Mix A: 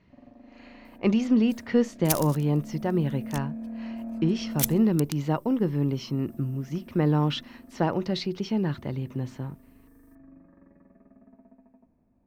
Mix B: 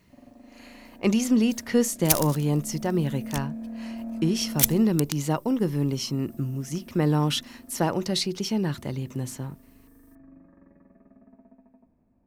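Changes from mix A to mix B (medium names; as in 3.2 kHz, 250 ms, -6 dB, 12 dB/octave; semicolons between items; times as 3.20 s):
speech: remove distance through air 220 m; second sound +5.5 dB; reverb: on, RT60 1.2 s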